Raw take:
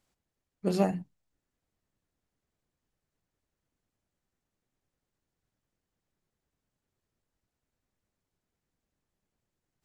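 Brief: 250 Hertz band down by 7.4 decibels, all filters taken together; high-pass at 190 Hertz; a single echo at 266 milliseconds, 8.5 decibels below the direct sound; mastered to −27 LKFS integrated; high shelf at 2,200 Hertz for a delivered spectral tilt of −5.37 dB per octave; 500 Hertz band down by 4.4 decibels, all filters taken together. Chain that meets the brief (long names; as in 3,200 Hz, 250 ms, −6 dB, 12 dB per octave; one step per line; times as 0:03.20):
high-pass filter 190 Hz
parametric band 250 Hz −7 dB
parametric band 500 Hz −3 dB
high-shelf EQ 2,200 Hz −7.5 dB
single-tap delay 266 ms −8.5 dB
level +9.5 dB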